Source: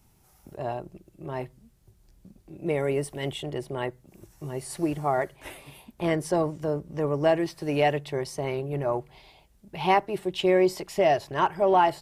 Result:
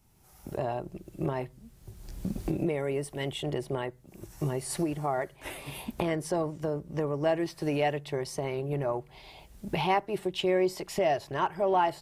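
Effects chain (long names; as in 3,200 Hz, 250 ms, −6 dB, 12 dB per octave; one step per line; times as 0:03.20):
camcorder AGC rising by 24 dB per second
level −5 dB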